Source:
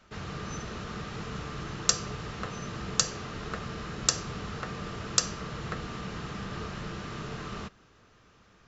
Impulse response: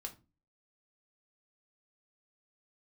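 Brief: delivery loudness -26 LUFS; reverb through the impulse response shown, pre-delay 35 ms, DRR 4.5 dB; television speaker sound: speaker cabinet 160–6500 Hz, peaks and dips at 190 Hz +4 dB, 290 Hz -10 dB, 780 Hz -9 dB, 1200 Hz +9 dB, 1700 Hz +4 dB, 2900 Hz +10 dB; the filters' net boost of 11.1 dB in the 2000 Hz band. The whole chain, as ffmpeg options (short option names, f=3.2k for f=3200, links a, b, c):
-filter_complex "[0:a]equalizer=f=2k:t=o:g=8.5,asplit=2[a][b];[1:a]atrim=start_sample=2205,adelay=35[c];[b][c]afir=irnorm=-1:irlink=0,volume=-1.5dB[d];[a][d]amix=inputs=2:normalize=0,highpass=f=160:w=0.5412,highpass=f=160:w=1.3066,equalizer=f=190:t=q:w=4:g=4,equalizer=f=290:t=q:w=4:g=-10,equalizer=f=780:t=q:w=4:g=-9,equalizer=f=1.2k:t=q:w=4:g=9,equalizer=f=1.7k:t=q:w=4:g=4,equalizer=f=2.9k:t=q:w=4:g=10,lowpass=f=6.5k:w=0.5412,lowpass=f=6.5k:w=1.3066,volume=2dB"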